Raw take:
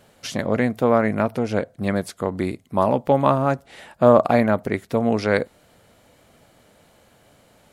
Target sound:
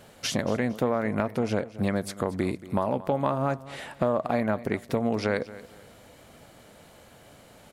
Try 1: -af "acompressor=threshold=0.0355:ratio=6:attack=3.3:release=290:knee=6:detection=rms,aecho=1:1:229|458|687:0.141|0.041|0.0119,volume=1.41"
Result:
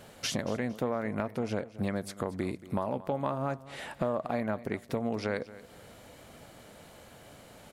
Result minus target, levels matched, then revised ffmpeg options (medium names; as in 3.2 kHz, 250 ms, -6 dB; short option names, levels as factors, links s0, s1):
compression: peak gain reduction +6 dB
-af "acompressor=threshold=0.0794:ratio=6:attack=3.3:release=290:knee=6:detection=rms,aecho=1:1:229|458|687:0.141|0.041|0.0119,volume=1.41"